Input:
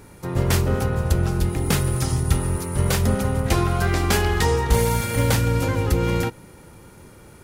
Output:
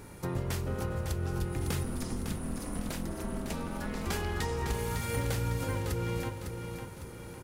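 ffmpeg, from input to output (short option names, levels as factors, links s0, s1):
-filter_complex "[0:a]acompressor=threshold=0.0398:ratio=6,asplit=3[s0][s1][s2];[s0]afade=t=out:st=1.83:d=0.02[s3];[s1]aeval=exprs='val(0)*sin(2*PI*120*n/s)':c=same,afade=t=in:st=1.83:d=0.02,afade=t=out:st=4.05:d=0.02[s4];[s2]afade=t=in:st=4.05:d=0.02[s5];[s3][s4][s5]amix=inputs=3:normalize=0,aecho=1:1:554|1108|1662|2216|2770:0.447|0.192|0.0826|0.0355|0.0153,volume=0.75"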